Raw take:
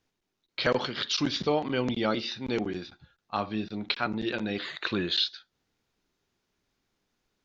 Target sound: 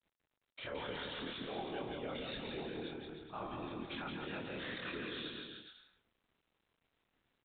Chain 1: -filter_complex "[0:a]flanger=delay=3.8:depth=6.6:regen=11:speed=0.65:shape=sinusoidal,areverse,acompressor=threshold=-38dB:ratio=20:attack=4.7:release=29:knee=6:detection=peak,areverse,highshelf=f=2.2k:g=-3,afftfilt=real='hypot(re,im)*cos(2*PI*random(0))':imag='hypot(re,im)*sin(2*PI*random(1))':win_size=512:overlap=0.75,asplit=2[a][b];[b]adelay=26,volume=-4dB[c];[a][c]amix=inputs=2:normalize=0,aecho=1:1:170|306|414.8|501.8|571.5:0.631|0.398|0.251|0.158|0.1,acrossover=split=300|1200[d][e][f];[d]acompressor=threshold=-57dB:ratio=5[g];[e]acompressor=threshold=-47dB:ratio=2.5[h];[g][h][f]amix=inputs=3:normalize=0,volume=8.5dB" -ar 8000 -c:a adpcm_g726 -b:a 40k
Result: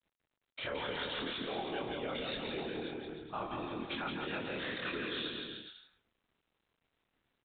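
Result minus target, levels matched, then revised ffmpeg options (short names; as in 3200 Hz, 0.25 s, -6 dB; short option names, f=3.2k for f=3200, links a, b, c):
compressor: peak gain reduction -6 dB
-filter_complex "[0:a]flanger=delay=3.8:depth=6.6:regen=11:speed=0.65:shape=sinusoidal,areverse,acompressor=threshold=-44.5dB:ratio=20:attack=4.7:release=29:knee=6:detection=peak,areverse,highshelf=f=2.2k:g=-3,afftfilt=real='hypot(re,im)*cos(2*PI*random(0))':imag='hypot(re,im)*sin(2*PI*random(1))':win_size=512:overlap=0.75,asplit=2[a][b];[b]adelay=26,volume=-4dB[c];[a][c]amix=inputs=2:normalize=0,aecho=1:1:170|306|414.8|501.8|571.5:0.631|0.398|0.251|0.158|0.1,acrossover=split=300|1200[d][e][f];[d]acompressor=threshold=-57dB:ratio=5[g];[e]acompressor=threshold=-47dB:ratio=2.5[h];[g][h][f]amix=inputs=3:normalize=0,volume=8.5dB" -ar 8000 -c:a adpcm_g726 -b:a 40k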